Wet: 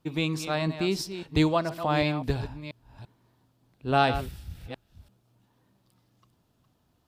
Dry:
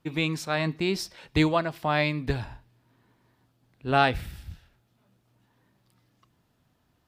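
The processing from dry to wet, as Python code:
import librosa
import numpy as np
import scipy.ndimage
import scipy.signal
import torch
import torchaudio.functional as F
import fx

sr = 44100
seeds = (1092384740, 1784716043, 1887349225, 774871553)

y = fx.reverse_delay(x, sr, ms=339, wet_db=-10.5)
y = fx.peak_eq(y, sr, hz=1900.0, db=-6.0, octaves=0.88)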